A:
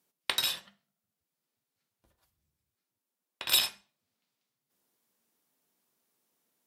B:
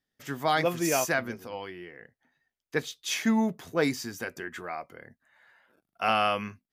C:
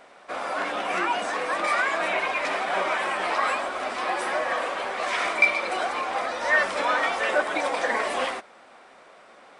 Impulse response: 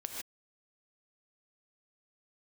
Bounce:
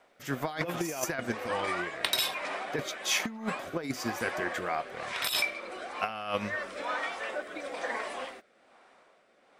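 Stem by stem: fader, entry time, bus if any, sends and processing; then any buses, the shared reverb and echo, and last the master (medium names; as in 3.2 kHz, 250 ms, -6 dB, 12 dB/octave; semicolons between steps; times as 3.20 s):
-2.5 dB, 1.75 s, no send, none
+2.0 dB, 0.00 s, no send, transient shaper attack -5 dB, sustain -9 dB
-11.5 dB, 0.00 s, no send, rotary cabinet horn 1.1 Hz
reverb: none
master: compressor with a negative ratio -29 dBFS, ratio -0.5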